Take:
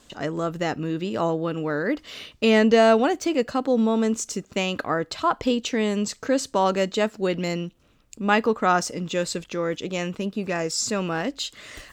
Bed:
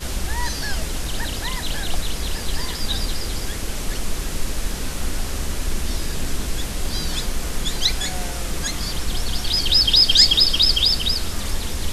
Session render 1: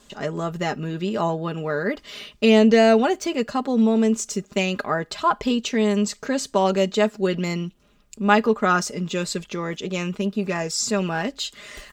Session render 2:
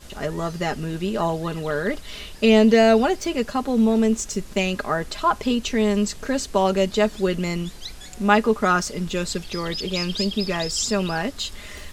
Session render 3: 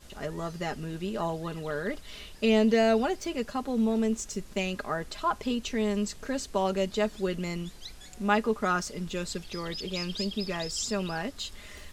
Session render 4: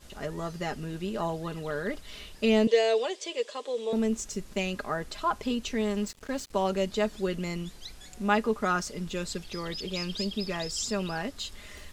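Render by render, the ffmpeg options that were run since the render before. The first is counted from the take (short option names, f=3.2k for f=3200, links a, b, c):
-af "aecho=1:1:4.9:0.59"
-filter_complex "[1:a]volume=-16dB[a];[0:a][a]amix=inputs=2:normalize=0"
-af "volume=-8dB"
-filter_complex "[0:a]asettb=1/sr,asplit=3[a][b][c];[a]atrim=end=2.674[d];[b]atrim=start=2.67:end=3.93,asetpts=PTS-STARTPTS,afade=t=in:d=0.004:c=qsin,afade=t=out:st=1.256:d=0.004:c=qsin,highpass=f=430:w=0.5412,highpass=f=430:w=1.3066,equalizer=f=480:t=q:w=4:g=7,equalizer=f=770:t=q:w=4:g=-8,equalizer=f=1.4k:t=q:w=4:g=-10,equalizer=f=3.4k:t=q:w=4:g=9,equalizer=f=7.7k:t=q:w=4:g=4,lowpass=f=9k:w=0.5412,lowpass=f=9k:w=1.3066[e];[c]atrim=start=3.926[f];[d][e]acrossfade=d=0.004:c1=hsin:c2=qsin[g];[g][f]acrossfade=d=0.004:c1=qsin:c2=hsin,asettb=1/sr,asplit=3[h][i][j];[h]atrim=end=5.814[k];[i]atrim=start=5.81:end=6.53,asetpts=PTS-STARTPTS,afade=t=in:d=0.004:c=qsin,afade=t=out:st=0.716:d=0.004:c=qsin,aeval=exprs='sgn(val(0))*max(abs(val(0))-0.00631,0)':c=same[l];[j]atrim=start=6.526[m];[k][l]acrossfade=d=0.004:c1=hsin:c2=qsin[n];[n][m]acrossfade=d=0.004:c1=qsin:c2=hsin"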